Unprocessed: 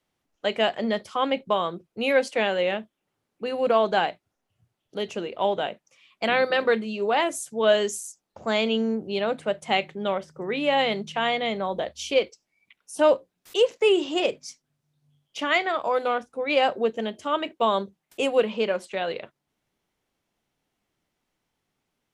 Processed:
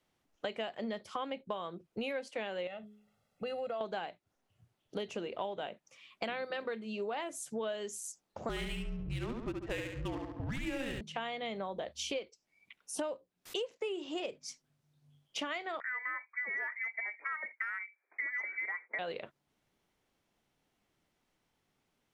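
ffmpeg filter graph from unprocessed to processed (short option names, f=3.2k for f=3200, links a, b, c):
-filter_complex "[0:a]asettb=1/sr,asplit=3[a][b][c];[a]atrim=end=2.674[d];[b]atrim=start=2.67:end=3.81,asetpts=PTS-STARTPTS,afade=t=in:d=0.004:c=qsin,afade=t=out:st=1.136:d=0.004:c=qsin,aecho=1:1:1.5:0.9,atrim=end_sample=50274,bandreject=f=210:t=h:w=4,bandreject=f=420:t=h:w=4,acompressor=threshold=-38dB:ratio=2:attack=3.2:release=140:knee=1:detection=peak[e];[c]atrim=start=3.806[f];[d][e]acrossfade=d=0.004:c1=hsin:c2=qsin[g];[g][f]acrossfade=d=0.004:c1=qsin:c2=hsin,asettb=1/sr,asplit=3[h][i][j];[h]atrim=end=8.494[k];[i]atrim=start=8.49:end=11.01,asetpts=PTS-STARTPTS,afade=t=in:d=0.004:c=qsin,afade=t=out:st=2.516:d=0.004:c=qsin,aecho=1:1:70|140|210|280|350|420:0.631|0.278|0.122|0.0537|0.0236|0.0104,atrim=end_sample=111132,afreqshift=-260,adynamicsmooth=sensitivity=7:basefreq=670[l];[j]atrim=start=11.006[m];[k][l]acrossfade=d=0.004:c1=hsin:c2=qsin[n];[n][m]acrossfade=d=0.004:c1=qsin:c2=hsin,asettb=1/sr,asplit=3[o][p][q];[o]atrim=end=15.804[r];[p]atrim=start=15.8:end=18.99,asetpts=PTS-STARTPTS,afade=t=in:d=0.004:c=qsin,afade=t=out:st=3.186:d=0.004:c=qsin,lowpass=f=2.1k:t=q:w=0.5098,lowpass=f=2.1k:t=q:w=0.6013,lowpass=f=2.1k:t=q:w=0.9,lowpass=f=2.1k:t=q:w=2.563,afreqshift=-2500,highpass=f=300:w=0.5412,highpass=f=300:w=1.3066,deesser=0.95[s];[q]atrim=start=18.986[t];[r][s]acrossfade=d=0.004:c1=hsin:c2=qsin[u];[u][t]acrossfade=d=0.004:c1=qsin:c2=hsin,highshelf=f=8.6k:g=-3.5,acompressor=threshold=-35dB:ratio=10"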